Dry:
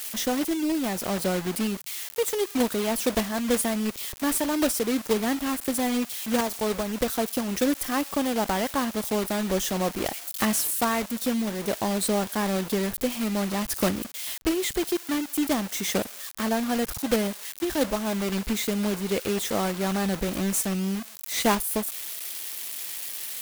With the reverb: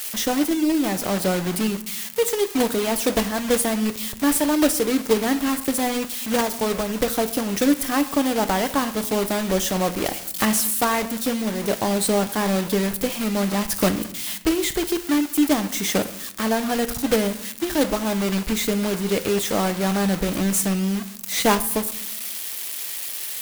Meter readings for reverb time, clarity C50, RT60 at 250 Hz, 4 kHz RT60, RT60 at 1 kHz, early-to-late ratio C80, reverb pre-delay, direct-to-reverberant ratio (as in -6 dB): 0.80 s, 15.0 dB, 1.4 s, 0.50 s, 0.75 s, 17.5 dB, 6 ms, 10.0 dB